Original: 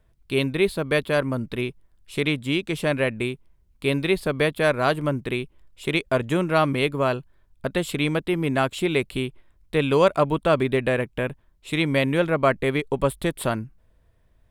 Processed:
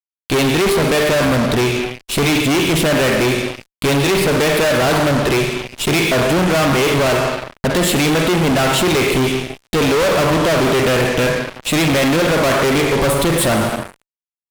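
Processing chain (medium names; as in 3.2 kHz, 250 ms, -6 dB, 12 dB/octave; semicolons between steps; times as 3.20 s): reverb removal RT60 0.56 s; Schroeder reverb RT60 1.1 s, DRR 8.5 dB; fuzz box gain 39 dB, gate -44 dBFS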